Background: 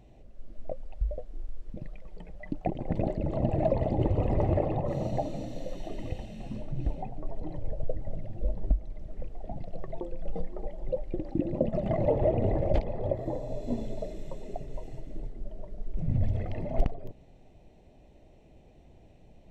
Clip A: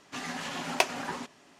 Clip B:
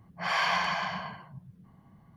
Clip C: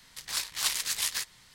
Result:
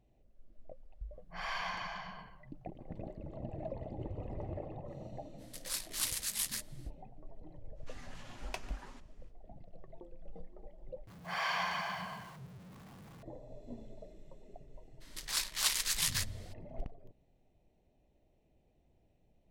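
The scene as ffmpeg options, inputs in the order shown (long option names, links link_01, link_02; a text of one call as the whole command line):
ffmpeg -i bed.wav -i cue0.wav -i cue1.wav -i cue2.wav -filter_complex "[2:a]asplit=2[link_01][link_02];[3:a]asplit=2[link_03][link_04];[0:a]volume=-15.5dB[link_05];[link_03]equalizer=frequency=11000:width=1:gain=8.5[link_06];[1:a]aecho=1:1:145:0.112[link_07];[link_02]aeval=exprs='val(0)+0.5*0.00841*sgn(val(0))':channel_layout=same[link_08];[link_05]asplit=2[link_09][link_10];[link_09]atrim=end=11.074[link_11];[link_08]atrim=end=2.16,asetpts=PTS-STARTPTS,volume=-8dB[link_12];[link_10]atrim=start=13.226[link_13];[link_01]atrim=end=2.16,asetpts=PTS-STARTPTS,volume=-11.5dB,afade=type=in:duration=0.004:curve=hsin,afade=type=out:start_time=2.156:duration=0.004:curve=hsin,adelay=1130[link_14];[link_06]atrim=end=1.54,asetpts=PTS-STARTPTS,volume=-10dB,afade=type=in:duration=0.05,afade=type=out:start_time=1.49:duration=0.05,adelay=236817S[link_15];[link_07]atrim=end=1.59,asetpts=PTS-STARTPTS,volume=-17.5dB,afade=type=in:duration=0.05,afade=type=out:start_time=1.54:duration=0.05,adelay=7740[link_16];[link_04]atrim=end=1.54,asetpts=PTS-STARTPTS,volume=-2.5dB,afade=type=in:duration=0.02,afade=type=out:start_time=1.52:duration=0.02,adelay=15000[link_17];[link_11][link_12]acrossfade=duration=0.004:curve1=hsin:curve2=hsin[link_18];[link_18][link_13]acrossfade=duration=0.004:curve1=hsin:curve2=hsin[link_19];[link_19][link_14][link_15][link_16][link_17]amix=inputs=5:normalize=0" out.wav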